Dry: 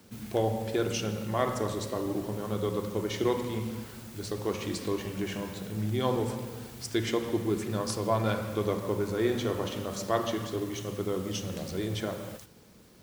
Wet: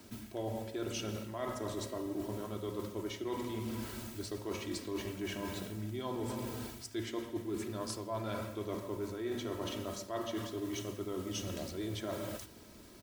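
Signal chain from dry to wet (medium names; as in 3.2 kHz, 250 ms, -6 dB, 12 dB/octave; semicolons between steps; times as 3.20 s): comb 3.1 ms, depth 54%; reverse; compression 6:1, threshold -37 dBFS, peak gain reduction 16 dB; reverse; trim +1 dB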